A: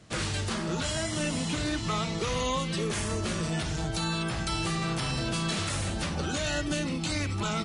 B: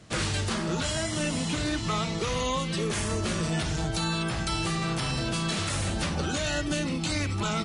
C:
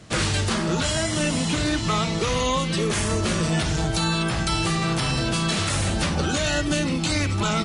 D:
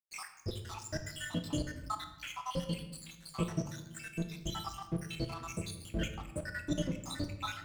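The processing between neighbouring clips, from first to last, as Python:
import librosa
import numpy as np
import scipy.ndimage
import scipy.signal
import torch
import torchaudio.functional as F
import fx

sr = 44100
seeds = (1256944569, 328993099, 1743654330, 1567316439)

y1 = fx.rider(x, sr, range_db=10, speed_s=0.5)
y1 = y1 * 10.0 ** (1.5 / 20.0)
y2 = y1 + 10.0 ** (-21.5 / 20.0) * np.pad(y1, (int(958 * sr / 1000.0), 0))[:len(y1)]
y2 = y2 * 10.0 ** (5.5 / 20.0)
y3 = fx.spec_dropout(y2, sr, seeds[0], share_pct=85)
y3 = np.sign(y3) * np.maximum(np.abs(y3) - 10.0 ** (-40.5 / 20.0), 0.0)
y3 = fx.room_shoebox(y3, sr, seeds[1], volume_m3=420.0, walls='mixed', distance_m=0.67)
y3 = y3 * 10.0 ** (-7.5 / 20.0)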